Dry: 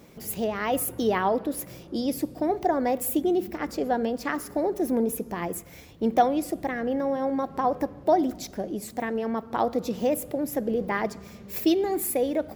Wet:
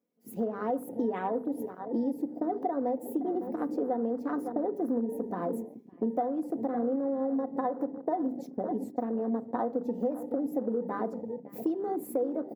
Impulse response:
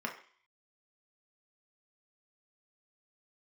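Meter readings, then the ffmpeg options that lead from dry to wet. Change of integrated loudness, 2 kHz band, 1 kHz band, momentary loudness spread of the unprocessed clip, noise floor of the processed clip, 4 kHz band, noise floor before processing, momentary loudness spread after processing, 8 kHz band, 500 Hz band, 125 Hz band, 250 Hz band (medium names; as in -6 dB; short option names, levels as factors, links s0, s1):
-5.0 dB, -14.5 dB, -7.5 dB, 9 LU, -49 dBFS, under -25 dB, -46 dBFS, 4 LU, under -20 dB, -5.5 dB, -7.0 dB, -3.0 dB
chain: -filter_complex "[0:a]agate=range=0.141:threshold=0.0126:ratio=16:detection=peak,highpass=290,tiltshelf=f=670:g=10,bandreject=f=50:t=h:w=6,bandreject=f=100:t=h:w=6,bandreject=f=150:t=h:w=6,bandreject=f=200:t=h:w=6,bandreject=f=250:t=h:w=6,bandreject=f=300:t=h:w=6,bandreject=f=350:t=h:w=6,bandreject=f=400:t=h:w=6,bandreject=f=450:t=h:w=6,aecho=1:1:4.1:0.5,asplit=2[s0][s1];[s1]adelay=557,lowpass=f=3100:p=1,volume=0.158,asplit=2[s2][s3];[s3]adelay=557,lowpass=f=3100:p=1,volume=0.28,asplit=2[s4][s5];[s5]adelay=557,lowpass=f=3100:p=1,volume=0.28[s6];[s0][s2][s4][s6]amix=inputs=4:normalize=0,afwtdn=0.0224,highshelf=f=7100:g=10,acompressor=threshold=0.0398:ratio=6,asplit=2[s7][s8];[1:a]atrim=start_sample=2205[s9];[s8][s9]afir=irnorm=-1:irlink=0,volume=0.126[s10];[s7][s10]amix=inputs=2:normalize=0"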